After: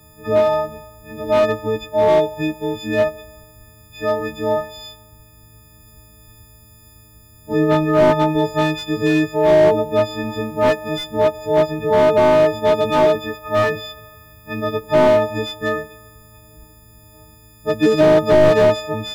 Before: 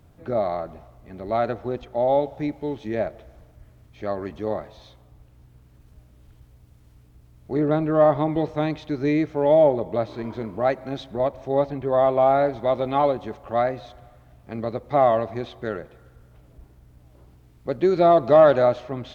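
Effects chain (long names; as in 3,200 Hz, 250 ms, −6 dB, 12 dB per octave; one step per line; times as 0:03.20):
every partial snapped to a pitch grid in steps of 6 semitones
0:13.14–0:14.84: double-tracking delay 12 ms −8 dB
slew-rate limiting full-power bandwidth 110 Hz
level +5.5 dB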